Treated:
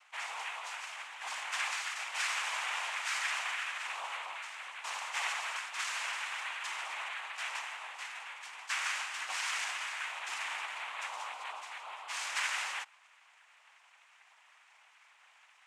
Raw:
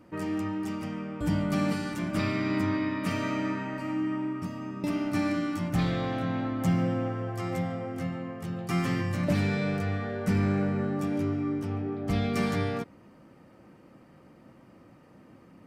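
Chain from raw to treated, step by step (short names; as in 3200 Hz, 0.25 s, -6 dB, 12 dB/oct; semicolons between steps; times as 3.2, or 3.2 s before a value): in parallel at -6 dB: hard clip -25.5 dBFS, distortion -12 dB; on the sum: noise vocoder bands 4; HPF 1200 Hz 24 dB/oct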